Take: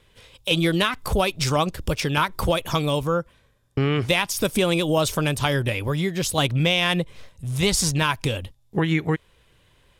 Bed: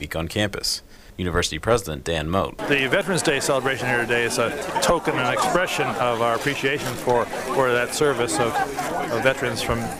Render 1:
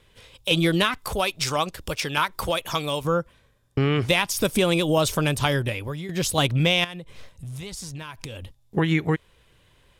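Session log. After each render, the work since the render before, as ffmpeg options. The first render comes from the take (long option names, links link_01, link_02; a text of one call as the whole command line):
ffmpeg -i in.wav -filter_complex "[0:a]asettb=1/sr,asplit=3[link_01][link_02][link_03];[link_01]atrim=end=0.974[link_04];[link_02]atrim=start=0.97:end=3.05,asetpts=PTS-STARTPTS,afade=type=in:duration=0.004:curve=qsin,afade=type=out:start_time=2.076:duration=0.004:curve=qsin,lowshelf=frequency=430:gain=-9.5[link_05];[link_03]atrim=start=3.046[link_06];[link_04][link_05]acrossfade=duration=0.004:curve1=hsin:curve2=qsin[link_07];[link_07][link_06]acrossfade=duration=0.004:curve1=qsin:curve2=hsin,asettb=1/sr,asplit=3[link_08][link_09][link_10];[link_08]atrim=end=6.844[link_11];[link_09]atrim=start=6.84:end=8.77,asetpts=PTS-STARTPTS,afade=type=in:duration=0.004:curve=qsin,afade=type=out:start_time=1.926:duration=0.004:curve=qsin,acompressor=threshold=-32dB:ratio=12:attack=3.2:release=140:knee=1:detection=peak[link_12];[link_10]atrim=start=8.766[link_13];[link_11][link_12]acrossfade=duration=0.004:curve1=hsin:curve2=qsin[link_14];[link_14][link_13]acrossfade=duration=0.004:curve1=qsin:curve2=hsin,asplit=2[link_15][link_16];[link_15]atrim=end=6.09,asetpts=PTS-STARTPTS,afade=type=out:start_time=5.48:duration=0.61:silence=0.237137[link_17];[link_16]atrim=start=6.09,asetpts=PTS-STARTPTS,afade=type=in:duration=0.004:curve=hsin:silence=0.237137[link_18];[link_17][link_18]concat=n=2:v=0:a=1" out.wav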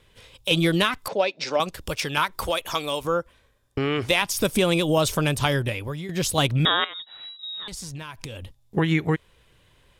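ffmpeg -i in.wav -filter_complex "[0:a]asettb=1/sr,asplit=3[link_01][link_02][link_03];[link_01]atrim=end=1.084[link_04];[link_02]atrim=start=1.08:end=1.6,asetpts=PTS-STARTPTS,afade=type=in:duration=0.004:curve=qsin,afade=type=out:start_time=0.516:duration=0.004:curve=qsin,highpass=frequency=210:width=0.5412,highpass=frequency=210:width=1.3066,equalizer=frequency=560:width_type=q:width=4:gain=7,equalizer=frequency=1200:width_type=q:width=4:gain=-9,equalizer=frequency=3200:width_type=q:width=4:gain=-7,lowpass=frequency=5000:width=0.5412,lowpass=frequency=5000:width=1.3066[link_05];[link_03]atrim=start=1.596[link_06];[link_04][link_05]acrossfade=duration=0.004:curve1=hsin:curve2=qsin[link_07];[link_07][link_06]acrossfade=duration=0.004:curve1=qsin:curve2=hsin,asettb=1/sr,asplit=3[link_08][link_09][link_10];[link_08]atrim=end=2.434[link_11];[link_09]atrim=start=2.43:end=4.22,asetpts=PTS-STARTPTS,afade=type=in:duration=0.004:curve=qsin,afade=type=out:start_time=1.786:duration=0.004:curve=qsin,equalizer=frequency=150:width=1.5:gain=-8.5[link_12];[link_10]atrim=start=4.216[link_13];[link_11][link_12]acrossfade=duration=0.004:curve1=hsin:curve2=qsin[link_14];[link_14][link_13]acrossfade=duration=0.004:curve1=qsin:curve2=hsin,asettb=1/sr,asplit=3[link_15][link_16][link_17];[link_15]atrim=end=6.654[link_18];[link_16]atrim=start=6.65:end=7.68,asetpts=PTS-STARTPTS,afade=type=in:duration=0.004:curve=qsin,afade=type=out:start_time=1.026:duration=0.004:curve=qsin,lowpass=frequency=3300:width_type=q:width=0.5098,lowpass=frequency=3300:width_type=q:width=0.6013,lowpass=frequency=3300:width_type=q:width=0.9,lowpass=frequency=3300:width_type=q:width=2.563,afreqshift=-3900[link_19];[link_17]atrim=start=7.676[link_20];[link_18][link_19]acrossfade=duration=0.004:curve1=hsin:curve2=qsin[link_21];[link_21][link_20]acrossfade=duration=0.004:curve1=qsin:curve2=hsin" out.wav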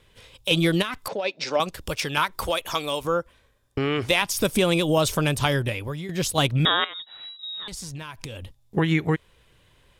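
ffmpeg -i in.wav -filter_complex "[0:a]asplit=3[link_01][link_02][link_03];[link_01]afade=type=out:start_time=0.81:duration=0.02[link_04];[link_02]acompressor=threshold=-24dB:ratio=6:attack=3.2:release=140:knee=1:detection=peak,afade=type=in:start_time=0.81:duration=0.02,afade=type=out:start_time=1.24:duration=0.02[link_05];[link_03]afade=type=in:start_time=1.24:duration=0.02[link_06];[link_04][link_05][link_06]amix=inputs=3:normalize=0,asplit=3[link_07][link_08][link_09];[link_07]afade=type=out:start_time=6.16:duration=0.02[link_10];[link_08]agate=range=-33dB:threshold=-25dB:ratio=3:release=100:detection=peak,afade=type=in:start_time=6.16:duration=0.02,afade=type=out:start_time=6.64:duration=0.02[link_11];[link_09]afade=type=in:start_time=6.64:duration=0.02[link_12];[link_10][link_11][link_12]amix=inputs=3:normalize=0" out.wav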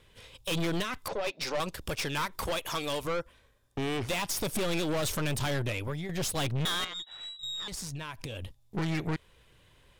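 ffmpeg -i in.wav -af "aeval=exprs='(tanh(25.1*val(0)+0.5)-tanh(0.5))/25.1':channel_layout=same" out.wav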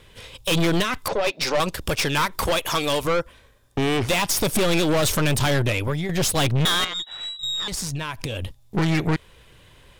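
ffmpeg -i in.wav -af "volume=10dB" out.wav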